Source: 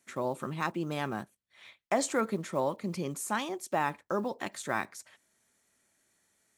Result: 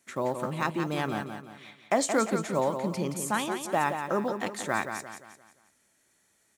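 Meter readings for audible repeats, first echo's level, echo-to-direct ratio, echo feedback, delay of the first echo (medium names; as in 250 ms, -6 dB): 4, -7.5 dB, -6.5 dB, 41%, 174 ms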